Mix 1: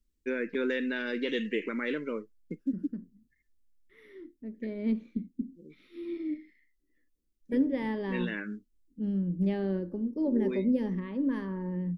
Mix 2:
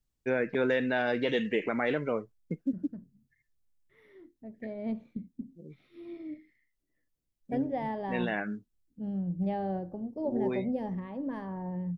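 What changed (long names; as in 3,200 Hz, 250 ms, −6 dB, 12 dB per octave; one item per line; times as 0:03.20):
second voice −7.0 dB
master: remove phaser with its sweep stopped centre 300 Hz, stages 4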